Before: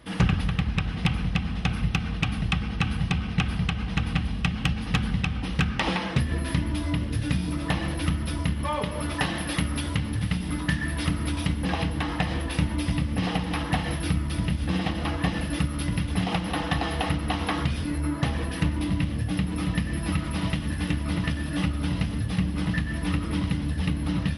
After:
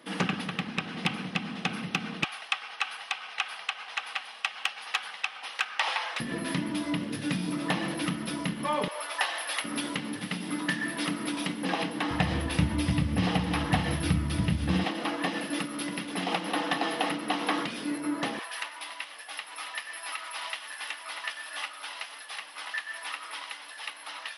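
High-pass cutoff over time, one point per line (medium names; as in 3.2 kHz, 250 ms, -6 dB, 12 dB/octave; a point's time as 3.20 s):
high-pass 24 dB/octave
210 Hz
from 2.24 s 710 Hz
from 6.20 s 180 Hz
from 8.88 s 620 Hz
from 9.64 s 220 Hz
from 12.11 s 73 Hz
from 14.84 s 250 Hz
from 18.39 s 780 Hz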